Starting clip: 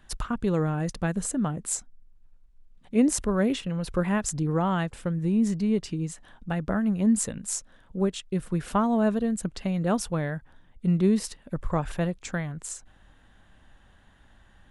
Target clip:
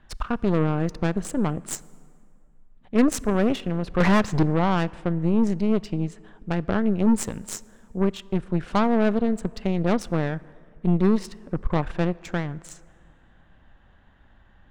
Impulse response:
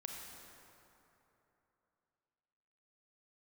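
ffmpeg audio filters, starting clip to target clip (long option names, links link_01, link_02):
-filter_complex "[0:a]asettb=1/sr,asplit=3[link_01][link_02][link_03];[link_01]atrim=end=4.004[link_04];[link_02]atrim=start=4:end=4.43,asetpts=PTS-STARTPTS,afade=type=in:duration=0.004:curve=qsin,afade=type=out:start_time=0.426:duration=0.004:curve=qsin,asplit=2[link_05][link_06];[link_06]highpass=frequency=720:poles=1,volume=28dB,asoftclip=type=tanh:threshold=-10dB[link_07];[link_05][link_07]amix=inputs=2:normalize=0,lowpass=frequency=1000:poles=1,volume=-6dB[link_08];[link_03]atrim=start=4.426[link_09];[link_04][link_08]acrossfade=duration=0.004:curve1=hsin:curve2=qsin[link_10];[link_10][link_09]acrossfade=duration=0.004:curve1=qsin:curve2=hsin,adynamicsmooth=sensitivity=4.5:basefreq=3400,aeval=exprs='0.316*(cos(1*acos(clip(val(0)/0.316,-1,1)))-cos(1*PI/2))+0.02*(cos(3*acos(clip(val(0)/0.316,-1,1)))-cos(3*PI/2))+0.0282*(cos(8*acos(clip(val(0)/0.316,-1,1)))-cos(8*PI/2))':channel_layout=same,asplit=2[link_11][link_12];[1:a]atrim=start_sample=2205,asetrate=57330,aresample=44100[link_13];[link_12][link_13]afir=irnorm=-1:irlink=0,volume=-13.5dB[link_14];[link_11][link_14]amix=inputs=2:normalize=0,volume=2.5dB"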